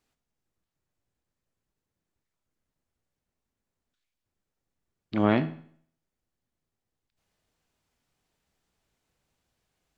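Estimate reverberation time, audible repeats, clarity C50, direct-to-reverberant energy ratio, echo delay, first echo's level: 0.55 s, no echo audible, 15.0 dB, 11.0 dB, no echo audible, no echo audible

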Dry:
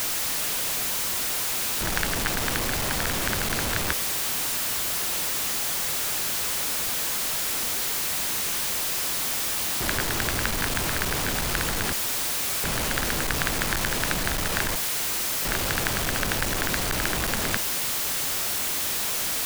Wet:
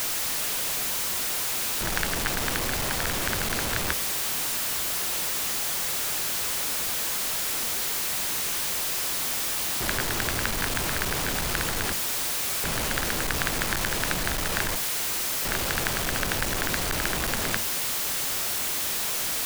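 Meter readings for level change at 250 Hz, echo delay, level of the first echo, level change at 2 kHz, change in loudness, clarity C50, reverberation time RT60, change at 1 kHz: −2.0 dB, no echo audible, no echo audible, −1.0 dB, −1.0 dB, no reverb audible, no reverb audible, −1.0 dB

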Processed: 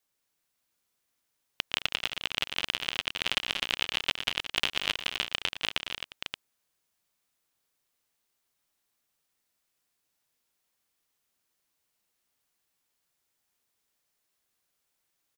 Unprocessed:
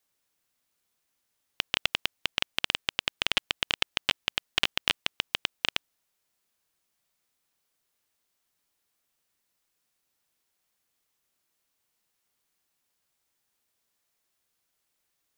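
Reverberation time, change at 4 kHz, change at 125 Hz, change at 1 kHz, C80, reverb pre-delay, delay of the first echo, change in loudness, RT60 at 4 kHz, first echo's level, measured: no reverb audible, −1.0 dB, −1.0 dB, −1.0 dB, no reverb audible, no reverb audible, 115 ms, −1.5 dB, no reverb audible, −15.0 dB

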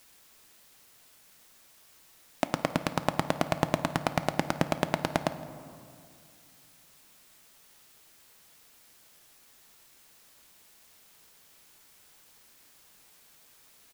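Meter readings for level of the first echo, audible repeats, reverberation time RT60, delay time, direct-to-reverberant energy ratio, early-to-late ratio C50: −21.5 dB, 1, 2.3 s, 164 ms, 10.0 dB, 12.5 dB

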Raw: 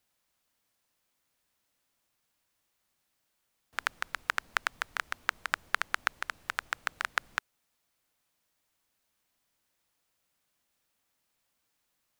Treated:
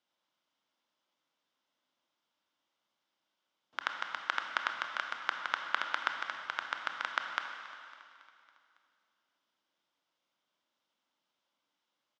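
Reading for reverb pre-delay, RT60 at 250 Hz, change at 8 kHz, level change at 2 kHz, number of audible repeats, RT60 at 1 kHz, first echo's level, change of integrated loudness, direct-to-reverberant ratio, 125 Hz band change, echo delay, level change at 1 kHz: 22 ms, 2.6 s, −11.0 dB, −3.0 dB, 4, 2.6 s, −18.0 dB, −2.0 dB, 3.5 dB, can't be measured, 277 ms, 0.0 dB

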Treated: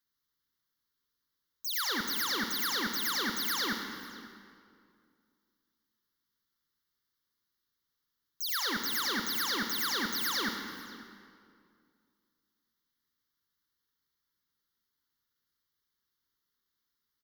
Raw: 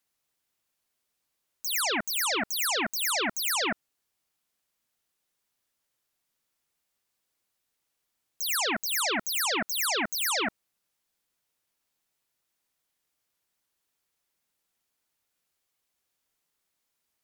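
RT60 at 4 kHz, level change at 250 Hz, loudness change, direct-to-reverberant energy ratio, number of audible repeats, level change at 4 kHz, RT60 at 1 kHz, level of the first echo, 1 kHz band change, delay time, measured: 1.7 s, −1.5 dB, −4.0 dB, 3.5 dB, 1, −2.5 dB, 2.2 s, −21.0 dB, −4.0 dB, 544 ms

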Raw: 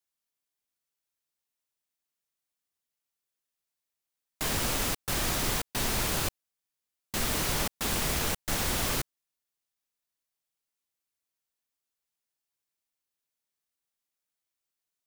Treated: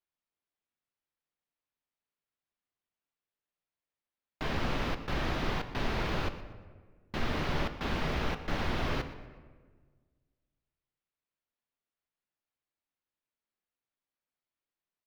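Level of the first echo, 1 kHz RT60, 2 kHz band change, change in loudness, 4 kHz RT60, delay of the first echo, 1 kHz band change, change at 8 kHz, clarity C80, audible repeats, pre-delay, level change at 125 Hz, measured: −16.5 dB, 1.4 s, −2.5 dB, −5.5 dB, 0.85 s, 121 ms, −1.0 dB, −22.5 dB, 11.5 dB, 2, 3 ms, 0.0 dB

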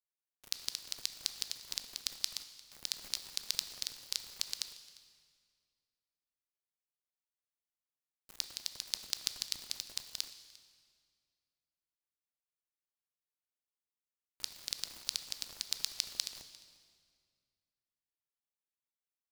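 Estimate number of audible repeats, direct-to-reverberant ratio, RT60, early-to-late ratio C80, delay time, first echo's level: 1, 9.0 dB, 2.0 s, 11.5 dB, 350 ms, −22.5 dB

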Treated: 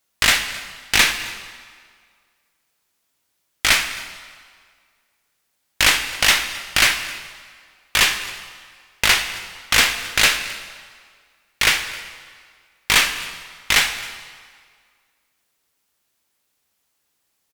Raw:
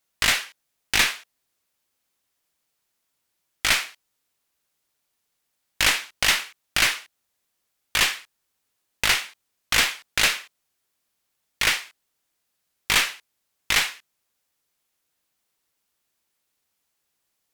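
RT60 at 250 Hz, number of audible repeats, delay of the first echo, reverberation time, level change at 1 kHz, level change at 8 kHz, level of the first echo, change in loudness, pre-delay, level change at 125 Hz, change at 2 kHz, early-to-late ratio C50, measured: 1.7 s, 1, 264 ms, 1.9 s, +5.0 dB, +5.0 dB, −21.0 dB, +4.0 dB, 5 ms, +5.0 dB, +5.0 dB, 10.0 dB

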